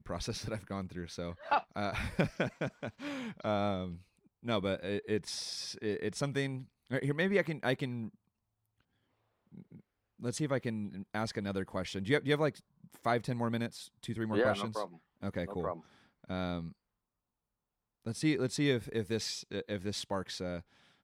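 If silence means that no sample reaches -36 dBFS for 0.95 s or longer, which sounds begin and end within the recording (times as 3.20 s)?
10.23–16.67 s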